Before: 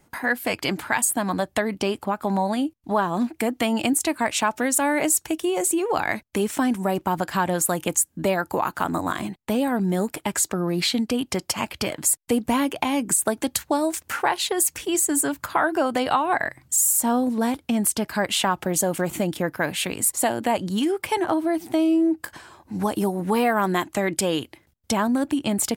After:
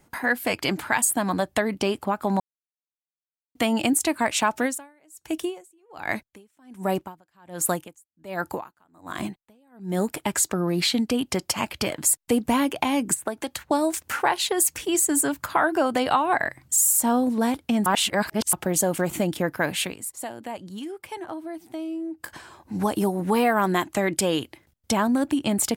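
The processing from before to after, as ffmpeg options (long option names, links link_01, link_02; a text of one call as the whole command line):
ffmpeg -i in.wav -filter_complex "[0:a]asplit=3[link_01][link_02][link_03];[link_01]afade=type=out:start_time=4.65:duration=0.02[link_04];[link_02]aeval=exprs='val(0)*pow(10,-38*(0.5-0.5*cos(2*PI*1.3*n/s))/20)':channel_layout=same,afade=type=in:start_time=4.65:duration=0.02,afade=type=out:start_time=9.97:duration=0.02[link_05];[link_03]afade=type=in:start_time=9.97:duration=0.02[link_06];[link_04][link_05][link_06]amix=inputs=3:normalize=0,asettb=1/sr,asplit=3[link_07][link_08][link_09];[link_07]atrim=end=13.144[link_10];[link_08]atrim=start=13.14:end=13.71,asetpts=PTS-STARTPTS,afade=type=in:duration=0.004:curve=qsin,afade=type=out:start_time=0.566:duration=0.004:curve=qsin,acrossover=split=450|3000[link_11][link_12][link_13];[link_11]acompressor=threshold=-35dB:ratio=4[link_14];[link_12]acompressor=threshold=-27dB:ratio=4[link_15];[link_13]acompressor=threshold=-36dB:ratio=4[link_16];[link_14][link_15][link_16]amix=inputs=3:normalize=0[link_17];[link_09]atrim=start=13.706[link_18];[link_10][link_17]acrossfade=duration=0.004:curve1=hsin:curve2=qsin[link_19];[link_19][link_18]acrossfade=duration=0.004:curve1=qsin:curve2=hsin,asplit=7[link_20][link_21][link_22][link_23][link_24][link_25][link_26];[link_20]atrim=end=2.4,asetpts=PTS-STARTPTS,afade=type=out:start_time=2.396:duration=0.004:curve=hsin[link_27];[link_21]atrim=start=2.4:end=3.55,asetpts=PTS-STARTPTS,volume=0[link_28];[link_22]atrim=start=3.55:end=17.862,asetpts=PTS-STARTPTS,afade=type=in:duration=0.004:curve=hsin[link_29];[link_23]atrim=start=17.858:end=18.532,asetpts=PTS-STARTPTS,areverse[link_30];[link_24]atrim=start=18.528:end=19.97,asetpts=PTS-STARTPTS,afade=type=out:start_time=1.282:duration=0.16:silence=0.251189[link_31];[link_25]atrim=start=19.97:end=22.15,asetpts=PTS-STARTPTS,volume=-12dB[link_32];[link_26]atrim=start=22.15,asetpts=PTS-STARTPTS,afade=type=in:duration=0.16:silence=0.251189[link_33];[link_27][link_28][link_29]concat=n=3:v=0:a=1[link_34];[link_34][link_30]acrossfade=duration=0.004:curve1=hsin:curve2=hsin[link_35];[link_31][link_32][link_33]concat=n=3:v=0:a=1[link_36];[link_35][link_36]acrossfade=duration=0.004:curve1=hsin:curve2=hsin" out.wav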